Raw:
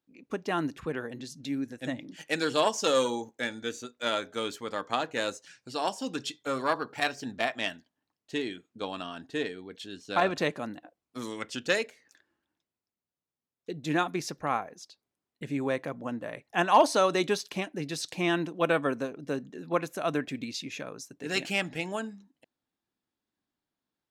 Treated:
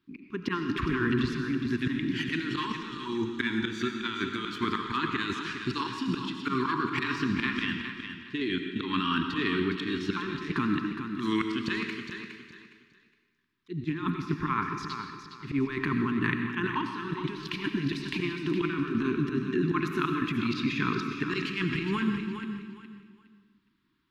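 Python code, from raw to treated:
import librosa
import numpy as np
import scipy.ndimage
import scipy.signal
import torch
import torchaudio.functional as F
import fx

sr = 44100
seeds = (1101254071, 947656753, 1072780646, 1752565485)

p1 = scipy.signal.sosfilt(scipy.signal.ellip(3, 1.0, 40, [380.0, 1000.0], 'bandstop', fs=sr, output='sos'), x)
p2 = fx.high_shelf(p1, sr, hz=4100.0, db=12.0)
p3 = fx.level_steps(p2, sr, step_db=16)
p4 = p2 + (p3 * 10.0 ** (-2.0 / 20.0))
p5 = fx.auto_swell(p4, sr, attack_ms=208.0)
p6 = fx.over_compress(p5, sr, threshold_db=-38.0, ratio=-1.0)
p7 = fx.air_absorb(p6, sr, metres=380.0)
p8 = p7 + fx.echo_feedback(p7, sr, ms=413, feedback_pct=26, wet_db=-8.5, dry=0)
p9 = fx.rev_freeverb(p8, sr, rt60_s=1.1, hf_ratio=1.0, predelay_ms=50, drr_db=5.5)
y = p9 * 10.0 ** (9.0 / 20.0)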